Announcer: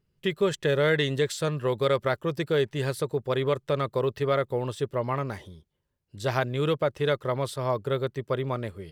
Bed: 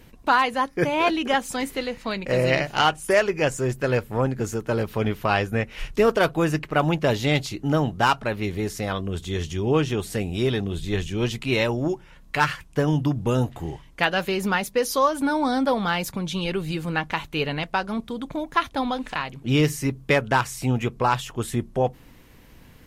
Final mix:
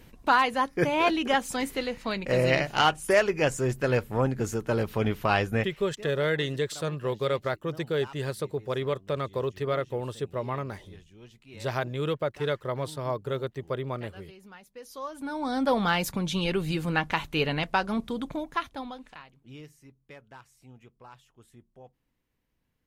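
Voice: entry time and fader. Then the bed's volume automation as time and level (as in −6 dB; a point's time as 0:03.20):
5.40 s, −3.5 dB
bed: 0:05.62 −2.5 dB
0:05.87 −26 dB
0:14.64 −26 dB
0:15.76 −1 dB
0:18.21 −1 dB
0:19.72 −28.5 dB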